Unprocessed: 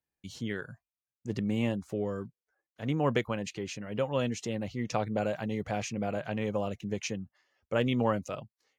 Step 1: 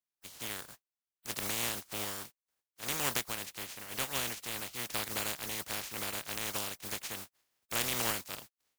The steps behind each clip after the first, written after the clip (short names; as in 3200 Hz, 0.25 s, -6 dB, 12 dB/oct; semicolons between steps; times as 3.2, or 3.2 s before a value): spectral contrast lowered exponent 0.16; gain -5 dB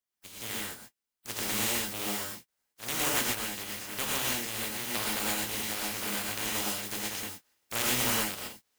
non-linear reverb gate 0.15 s rising, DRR -3 dB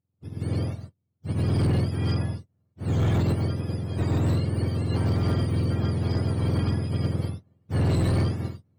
spectrum mirrored in octaves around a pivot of 1000 Hz; hard clip -21.5 dBFS, distortion -11 dB; gain +2.5 dB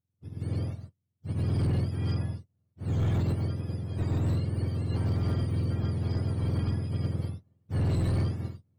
low shelf 130 Hz +6.5 dB; gain -7.5 dB